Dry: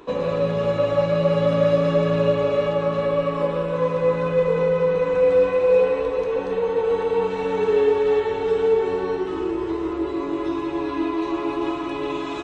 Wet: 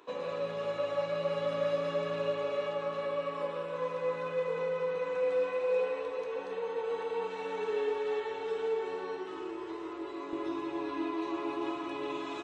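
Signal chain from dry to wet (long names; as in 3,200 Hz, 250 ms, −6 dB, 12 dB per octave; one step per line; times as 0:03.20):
high-pass filter 680 Hz 6 dB per octave, from 0:10.33 270 Hz
level −8.5 dB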